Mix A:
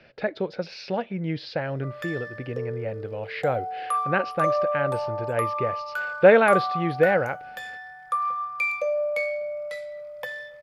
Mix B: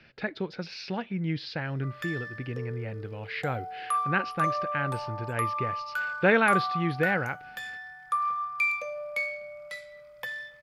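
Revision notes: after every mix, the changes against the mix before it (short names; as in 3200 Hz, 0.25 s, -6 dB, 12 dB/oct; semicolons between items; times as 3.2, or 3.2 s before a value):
master: add bell 570 Hz -12 dB 0.89 oct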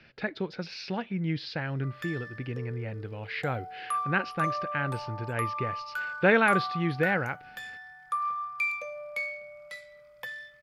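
background: send -11.5 dB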